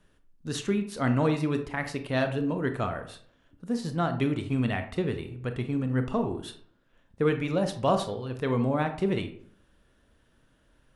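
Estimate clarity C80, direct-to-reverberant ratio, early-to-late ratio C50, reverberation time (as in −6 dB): 14.0 dB, 7.5 dB, 10.5 dB, 0.60 s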